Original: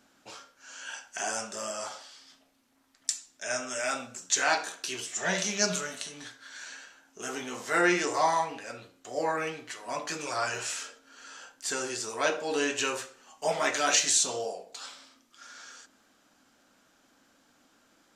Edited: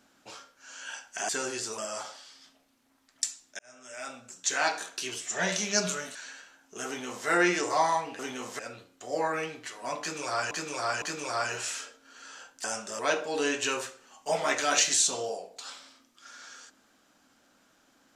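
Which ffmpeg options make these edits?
-filter_complex "[0:a]asplit=11[a][b][c][d][e][f][g][h][i][j][k];[a]atrim=end=1.292[l];[b]atrim=start=11.658:end=12.152[m];[c]atrim=start=1.638:end=3.45,asetpts=PTS-STARTPTS,afade=t=out:st=1.808:d=0.004:c=hsin[n];[d]atrim=start=3.45:end=6.012,asetpts=PTS-STARTPTS,afade=t=in:d=1.23[o];[e]atrim=start=6.588:end=8.632[p];[f]atrim=start=7.308:end=7.712[q];[g]atrim=start=8.628:end=10.552[r];[h]atrim=start=10.038:end=10.552[s];[i]atrim=start=10.038:end=11.662[t];[j]atrim=start=1.288:end=1.642[u];[k]atrim=start=12.148[v];[l][m]acrossfade=d=0.004:c1=hsin:c2=hsin[w];[n][o]concat=n=2:v=0:a=1[x];[w][x]acrossfade=d=0.004:c1=hsin:c2=hsin[y];[y][p]acrossfade=d=0.004:c1=hsin:c2=hsin[z];[z][q]acrossfade=d=0.004:c1=hsin:c2=hsin[aa];[aa][r]acrossfade=d=0.004:c1=hsin:c2=hsin[ab];[ab][s]acrossfade=d=0.004:c1=hsin:c2=hsin[ac];[ac][t]acrossfade=d=0.004:c1=hsin:c2=hsin[ad];[ad][u]acrossfade=d=0.004:c1=hsin:c2=hsin[ae];[ae][v]acrossfade=d=0.004:c1=hsin:c2=hsin"

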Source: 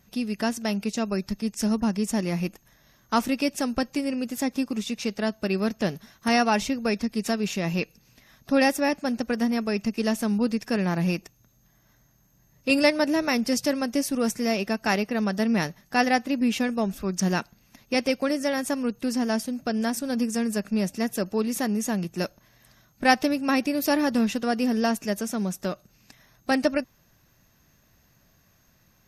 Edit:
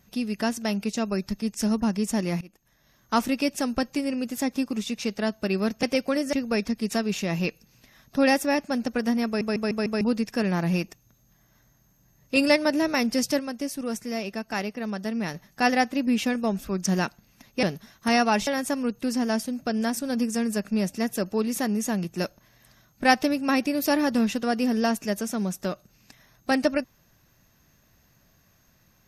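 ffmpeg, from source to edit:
-filter_complex "[0:a]asplit=13[a][b][c][d][e][f][g][h][i][j][k][l][m];[a]atrim=end=2.41,asetpts=PTS-STARTPTS,afade=t=out:st=2.406:d=0.004:c=hsin:silence=0.0707946[n];[b]atrim=start=2.41:end=5.832,asetpts=PTS-STARTPTS,afade=t=in:d=0.75:silence=0.0707946[o];[c]atrim=start=17.968:end=18.472[p];[d]atrim=start=6.668:end=9.752[q];[e]atrim=start=9.598:end=9.752[r];[f]atrim=start=9.598:end=9.752[s];[g]atrim=start=9.598:end=9.752[t];[h]atrim=start=9.598:end=9.752[u];[i]atrim=start=10.348:end=13.732[v];[j]atrim=start=13.728:end=15.682,asetpts=PTS-STARTPTS,volume=-5.5dB[w];[k]atrim=start=15.678:end=17.972[x];[l]atrim=start=5.828:end=6.672[y];[m]atrim=start=18.468[z];[n][o]concat=n=2:v=0:a=1[aa];[aa][p]acrossfade=d=0.004:c1=hsin:c2=hsin[ab];[ab][q]acrossfade=d=0.004:c1=hsin:c2=hsin[ac];[ac][r]acrossfade=d=0.004:c1=hsin:c2=hsin[ad];[ad][s]acrossfade=d=0.004:c1=hsin:c2=hsin[ae];[ae][t]acrossfade=d=0.004:c1=hsin:c2=hsin[af];[af][u]acrossfade=d=0.004:c1=hsin:c2=hsin[ag];[ag][v]acrossfade=d=0.004:c1=hsin:c2=hsin[ah];[ah][w]acrossfade=d=0.004:c1=hsin:c2=hsin[ai];[ai][x]acrossfade=d=0.004:c1=hsin:c2=hsin[aj];[aj][y]acrossfade=d=0.004:c1=hsin:c2=hsin[ak];[ak][z]acrossfade=d=0.004:c1=hsin:c2=hsin"

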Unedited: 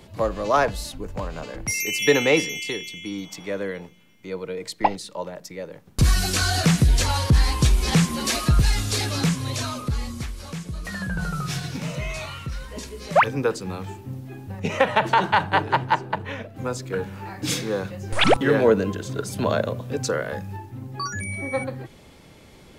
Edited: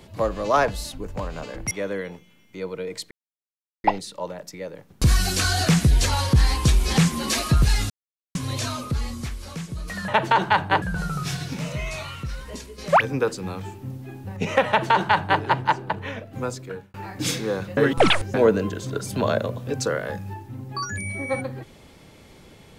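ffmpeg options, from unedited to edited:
-filter_complex "[0:a]asplit=11[a][b][c][d][e][f][g][h][i][j][k];[a]atrim=end=1.712[l];[b]atrim=start=3.408:end=4.81,asetpts=PTS-STARTPTS,afade=t=out:st=1.398:d=0.004:c=hsin,apad=pad_dur=0.73[m];[c]atrim=start=4.81:end=8.87,asetpts=PTS-STARTPTS,afade=t=in:d=0.004:c=hsin,afade=t=out:st=4.056:d=0.004:c=hsin[n];[d]atrim=start=8.87:end=9.32,asetpts=PTS-STARTPTS,volume=0[o];[e]atrim=start=9.32:end=11.052,asetpts=PTS-STARTPTS,afade=t=in:d=0.004:c=hsin[p];[f]atrim=start=14.898:end=15.642[q];[g]atrim=start=11.048:end=13.01,asetpts=PTS-STARTPTS,afade=t=out:st=1.672:d=0.29:silence=0.473151[r];[h]atrim=start=13.01:end=17.17,asetpts=PTS-STARTPTS,afade=t=in:d=0.004:c=hsin:silence=0.473151,afade=t=out:st=3.66:d=0.5[s];[i]atrim=start=17.17:end=18.002,asetpts=PTS-STARTPTS,afade=t=in:d=0.004:c=hsin[t];[j]atrim=start=17.998:end=18.572,asetpts=PTS-STARTPTS,areverse[u];[k]atrim=start=18.568[v];[m][n][o][p]concat=n=4:v=0:a=1[w];[l][w]acrossfade=d=0.004:c1=hsin:c2=hsin[x];[x][q]acrossfade=d=0.004:c1=hsin:c2=hsin[y];[r][s][t]concat=n=3:v=0:a=1[z];[y][z]acrossfade=d=0.004:c1=hsin:c2=hsin[aa];[aa][u]acrossfade=d=0.004:c1=hsin:c2=hsin[ab];[ab][v]acrossfade=d=0.004:c1=hsin:c2=hsin"

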